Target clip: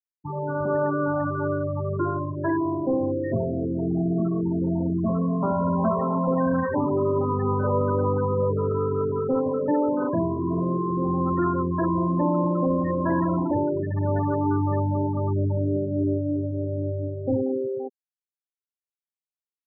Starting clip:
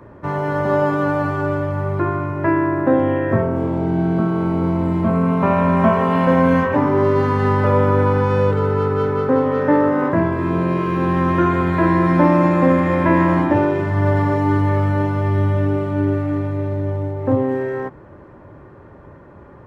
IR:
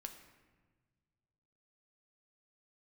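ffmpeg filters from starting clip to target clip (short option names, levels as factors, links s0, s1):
-filter_complex "[0:a]acrossover=split=140[s0][s1];[s1]dynaudnorm=f=350:g=3:m=1.58[s2];[s0][s2]amix=inputs=2:normalize=0,asoftclip=type=tanh:threshold=0.335,afftfilt=real='re*gte(hypot(re,im),0.282)':imag='im*gte(hypot(re,im),0.282)':win_size=1024:overlap=0.75,volume=0.473"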